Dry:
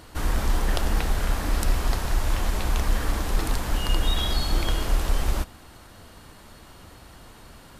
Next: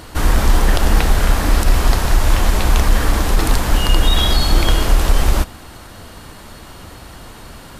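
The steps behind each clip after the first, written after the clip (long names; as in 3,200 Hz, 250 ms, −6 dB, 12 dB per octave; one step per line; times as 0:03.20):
boost into a limiter +12 dB
level −1.5 dB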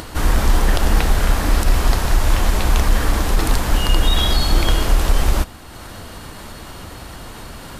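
upward compression, threshold −25 dBFS
level −2 dB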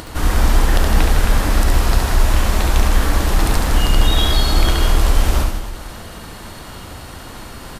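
reverse bouncing-ball delay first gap 70 ms, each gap 1.25×, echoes 5
level −1 dB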